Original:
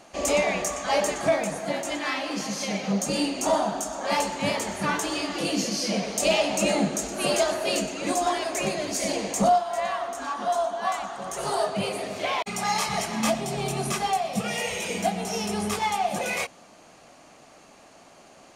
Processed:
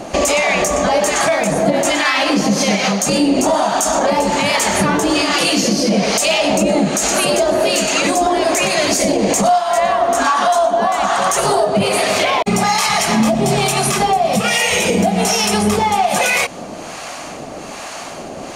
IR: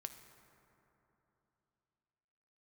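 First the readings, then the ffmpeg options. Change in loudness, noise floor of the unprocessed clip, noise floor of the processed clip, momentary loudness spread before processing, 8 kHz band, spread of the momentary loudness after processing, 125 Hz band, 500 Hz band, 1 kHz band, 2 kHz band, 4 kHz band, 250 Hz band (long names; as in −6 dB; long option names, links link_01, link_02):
+11.5 dB, −52 dBFS, −30 dBFS, 6 LU, +12.0 dB, 3 LU, +11.5 dB, +11.0 dB, +11.0 dB, +12.5 dB, +12.0 dB, +12.0 dB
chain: -filter_complex "[0:a]acompressor=threshold=-32dB:ratio=6,acrossover=split=710[link_01][link_02];[link_01]aeval=exprs='val(0)*(1-0.7/2+0.7/2*cos(2*PI*1.2*n/s))':channel_layout=same[link_03];[link_02]aeval=exprs='val(0)*(1-0.7/2-0.7/2*cos(2*PI*1.2*n/s))':channel_layout=same[link_04];[link_03][link_04]amix=inputs=2:normalize=0,alimiter=level_in=30.5dB:limit=-1dB:release=50:level=0:latency=1,volume=-5dB"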